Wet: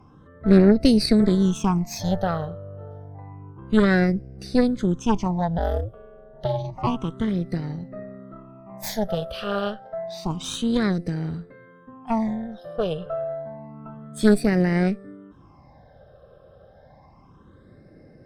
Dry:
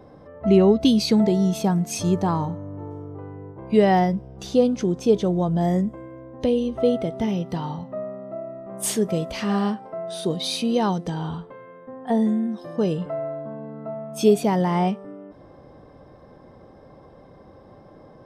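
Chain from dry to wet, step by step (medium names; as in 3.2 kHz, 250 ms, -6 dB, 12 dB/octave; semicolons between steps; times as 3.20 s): Chebyshev shaper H 4 -9 dB, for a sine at -4.5 dBFS; 5.58–6.87 s: ring modulator 110 Hz; phase shifter stages 8, 0.29 Hz, lowest notch 270–1000 Hz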